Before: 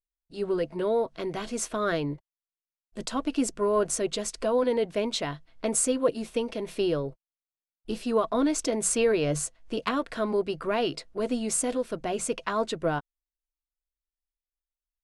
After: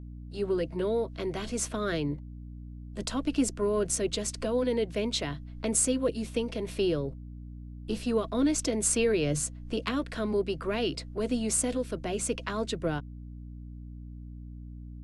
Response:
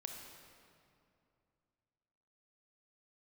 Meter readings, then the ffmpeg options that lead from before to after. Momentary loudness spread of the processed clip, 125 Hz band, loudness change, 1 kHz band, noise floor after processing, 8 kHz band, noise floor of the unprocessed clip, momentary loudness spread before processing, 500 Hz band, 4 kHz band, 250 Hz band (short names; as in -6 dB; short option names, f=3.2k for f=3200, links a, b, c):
18 LU, +3.0 dB, -1.5 dB, -7.0 dB, -43 dBFS, 0.0 dB, under -85 dBFS, 9 LU, -3.0 dB, 0.0 dB, 0.0 dB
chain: -filter_complex "[0:a]acrossover=split=260|490|1600[a][b][c][d];[c]acompressor=threshold=-41dB:ratio=6[e];[a][b][e][d]amix=inputs=4:normalize=0,aeval=exprs='val(0)+0.00891*(sin(2*PI*60*n/s)+sin(2*PI*2*60*n/s)/2+sin(2*PI*3*60*n/s)/3+sin(2*PI*4*60*n/s)/4+sin(2*PI*5*60*n/s)/5)':c=same"